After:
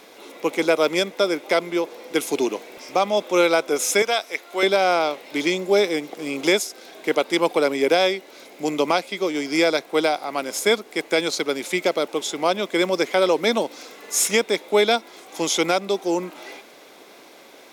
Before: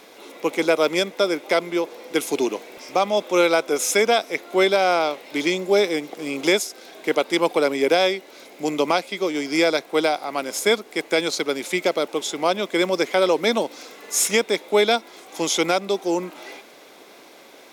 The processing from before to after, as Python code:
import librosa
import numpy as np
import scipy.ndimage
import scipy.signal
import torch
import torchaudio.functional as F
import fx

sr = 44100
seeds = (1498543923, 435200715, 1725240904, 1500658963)

y = fx.highpass(x, sr, hz=870.0, slope=6, at=(4.02, 4.63))